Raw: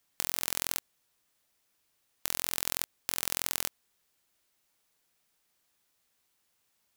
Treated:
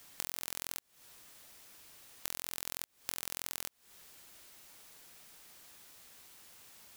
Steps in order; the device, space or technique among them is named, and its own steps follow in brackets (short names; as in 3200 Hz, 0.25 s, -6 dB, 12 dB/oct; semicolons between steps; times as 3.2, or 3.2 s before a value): serial compression, leveller first (compressor 2.5:1, threshold -37 dBFS, peak gain reduction 9.5 dB; compressor 8:1, threshold -50 dBFS, peak gain reduction 17 dB); gain +18 dB